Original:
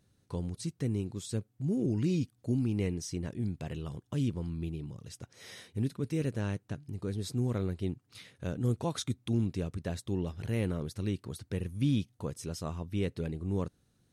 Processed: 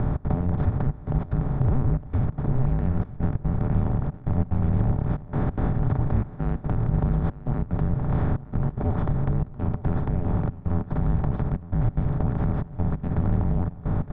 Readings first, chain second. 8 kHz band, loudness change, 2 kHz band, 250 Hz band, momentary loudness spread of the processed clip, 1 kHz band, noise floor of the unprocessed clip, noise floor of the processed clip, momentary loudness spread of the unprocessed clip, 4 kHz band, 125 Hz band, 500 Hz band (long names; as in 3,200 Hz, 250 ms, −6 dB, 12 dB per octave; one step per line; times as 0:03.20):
below −35 dB, +8.5 dB, +4.0 dB, +5.5 dB, 4 LU, +13.5 dB, −72 dBFS, −41 dBFS, 10 LU, below −10 dB, +10.5 dB, +4.0 dB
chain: compressor on every frequency bin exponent 0.2
low-pass filter 1,500 Hz 24 dB per octave
brickwall limiter −21 dBFS, peak gain reduction 10 dB
harmonic generator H 4 −30 dB, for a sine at −21 dBFS
gate pattern "xx.xxxxxxxx.." 183 BPM −24 dB
on a send: single-tap delay 912 ms −17.5 dB
on the sum: frequency shifter −260 Hz
level +8 dB